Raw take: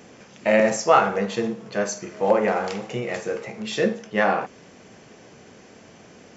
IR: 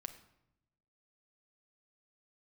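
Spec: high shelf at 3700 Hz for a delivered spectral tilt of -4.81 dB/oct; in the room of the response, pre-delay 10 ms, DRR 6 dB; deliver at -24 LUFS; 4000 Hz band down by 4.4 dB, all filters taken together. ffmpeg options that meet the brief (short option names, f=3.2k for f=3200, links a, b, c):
-filter_complex "[0:a]highshelf=f=3.7k:g=3.5,equalizer=f=4k:t=o:g=-9,asplit=2[a][b];[1:a]atrim=start_sample=2205,adelay=10[c];[b][c]afir=irnorm=-1:irlink=0,volume=-2.5dB[d];[a][d]amix=inputs=2:normalize=0,volume=-1.5dB"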